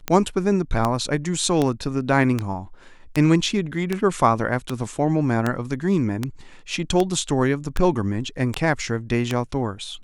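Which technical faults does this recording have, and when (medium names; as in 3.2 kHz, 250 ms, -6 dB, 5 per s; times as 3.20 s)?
tick 78 rpm -8 dBFS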